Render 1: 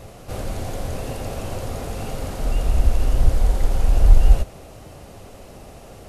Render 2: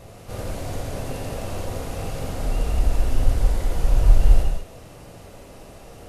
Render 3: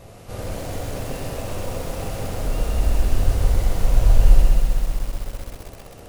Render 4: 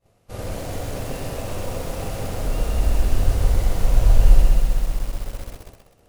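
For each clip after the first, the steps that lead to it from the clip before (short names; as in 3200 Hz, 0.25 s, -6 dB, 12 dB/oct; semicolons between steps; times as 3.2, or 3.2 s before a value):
non-linear reverb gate 0.22 s flat, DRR -0.5 dB; gain -4 dB
lo-fi delay 0.129 s, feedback 80%, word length 6-bit, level -7 dB
expander -30 dBFS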